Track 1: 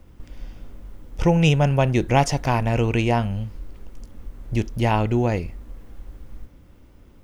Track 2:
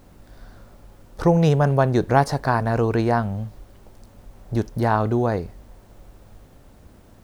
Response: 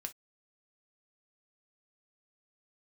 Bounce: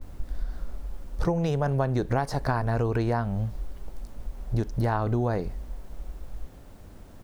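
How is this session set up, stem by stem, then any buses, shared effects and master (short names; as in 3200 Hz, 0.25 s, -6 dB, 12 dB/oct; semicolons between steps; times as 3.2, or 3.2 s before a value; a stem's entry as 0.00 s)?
-12.5 dB, 0.00 s, no send, tilt -4.5 dB/oct; auto duck -9 dB, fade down 1.35 s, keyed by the second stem
0.0 dB, 15 ms, polarity flipped, no send, dry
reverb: off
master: compressor 6:1, threshold -22 dBFS, peak gain reduction 11 dB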